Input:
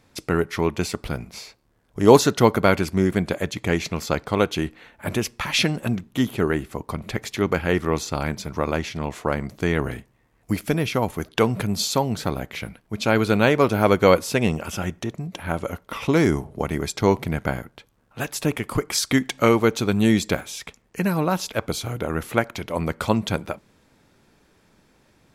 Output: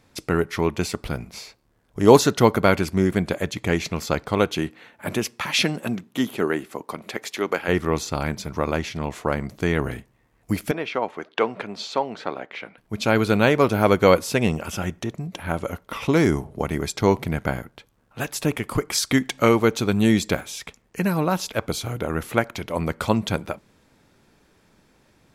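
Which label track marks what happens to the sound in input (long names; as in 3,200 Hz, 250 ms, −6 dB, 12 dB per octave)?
4.550000	7.670000	high-pass filter 100 Hz → 380 Hz
10.710000	12.780000	band-pass filter 390–3,000 Hz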